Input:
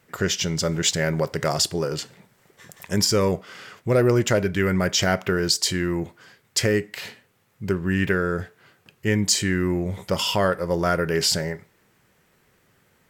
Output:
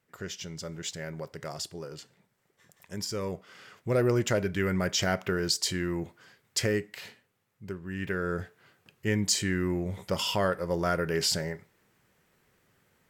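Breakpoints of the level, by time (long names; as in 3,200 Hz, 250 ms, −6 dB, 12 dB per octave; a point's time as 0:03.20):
0:02.96 −15 dB
0:03.99 −6.5 dB
0:06.70 −6.5 dB
0:07.87 −15 dB
0:08.31 −6 dB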